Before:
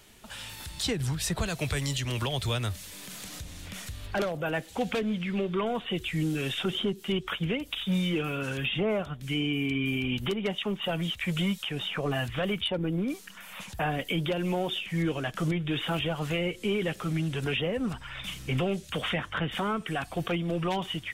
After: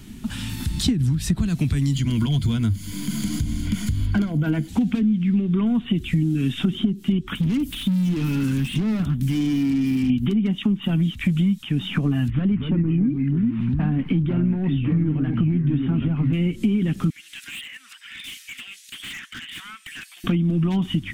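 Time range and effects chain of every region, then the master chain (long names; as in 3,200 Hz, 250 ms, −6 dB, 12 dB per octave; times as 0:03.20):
0:01.94–0:04.68: EQ curve with evenly spaced ripples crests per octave 1.8, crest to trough 10 dB + hard clipping −21.5 dBFS
0:07.35–0:10.10: high-shelf EQ 8,000 Hz +12 dB + gain into a clipping stage and back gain 35 dB
0:12.30–0:16.33: gain into a clipping stage and back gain 24.5 dB + delay with pitch and tempo change per echo 215 ms, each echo −3 semitones, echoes 2, each echo −6 dB + high-frequency loss of the air 460 metres
0:17.10–0:20.24: Chebyshev high-pass filter 1,900 Hz, order 3 + hard clipping −38 dBFS
whole clip: low shelf with overshoot 360 Hz +12.5 dB, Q 3; downward compressor 6 to 1, threshold −24 dBFS; level +5.5 dB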